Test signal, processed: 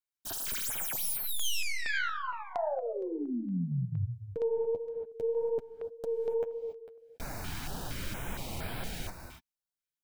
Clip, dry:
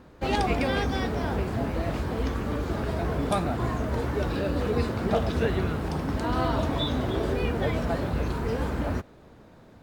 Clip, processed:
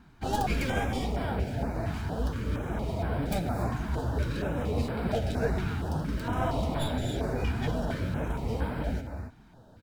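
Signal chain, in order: tracing distortion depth 0.21 ms; comb 1.3 ms, depth 32%; gated-style reverb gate 310 ms rising, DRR 7 dB; flange 1.8 Hz, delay 4 ms, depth 7.5 ms, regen -24%; step-sequenced notch 4.3 Hz 540–6400 Hz

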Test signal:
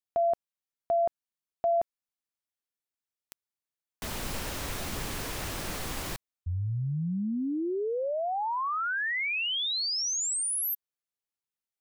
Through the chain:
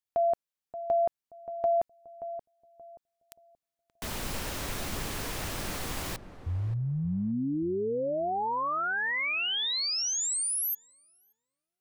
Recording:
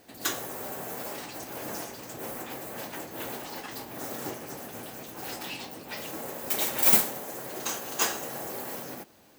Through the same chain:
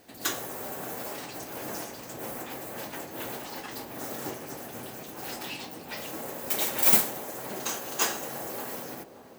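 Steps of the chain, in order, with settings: filtered feedback delay 578 ms, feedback 34%, low-pass 810 Hz, level -10 dB

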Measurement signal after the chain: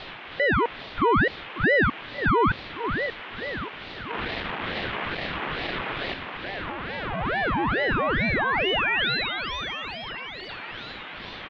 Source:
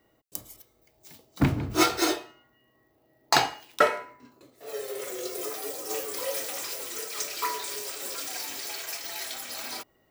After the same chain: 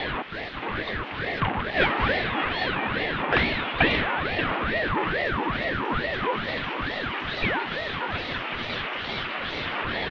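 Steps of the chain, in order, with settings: jump at every zero crossing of -17.5 dBFS; on a send: feedback delay 582 ms, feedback 56%, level -8 dB; on the sum: mistuned SSB +200 Hz 250–2700 Hz; ring modulator with a swept carrier 760 Hz, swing 70%, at 2.3 Hz

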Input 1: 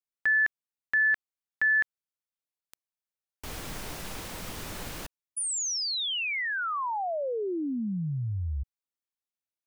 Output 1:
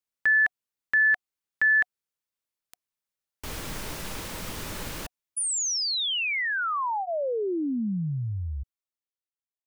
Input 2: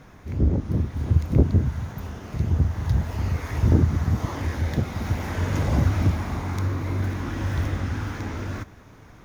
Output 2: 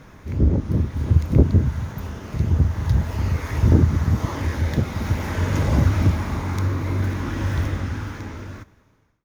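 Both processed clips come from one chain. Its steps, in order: fade out at the end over 1.78 s; band-stop 730 Hz, Q 12; trim +3 dB

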